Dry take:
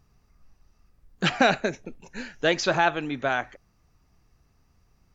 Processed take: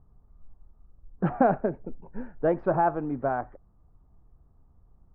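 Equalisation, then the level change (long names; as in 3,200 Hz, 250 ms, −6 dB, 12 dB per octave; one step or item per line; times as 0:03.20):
low-pass filter 1,100 Hz 24 dB per octave
low-shelf EQ 64 Hz +9 dB
0.0 dB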